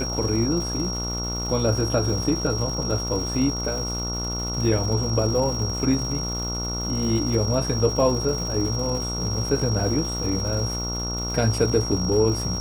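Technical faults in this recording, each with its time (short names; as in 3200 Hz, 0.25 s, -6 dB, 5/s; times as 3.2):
buzz 60 Hz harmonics 24 -30 dBFS
crackle 360/s -32 dBFS
tone 5600 Hz -29 dBFS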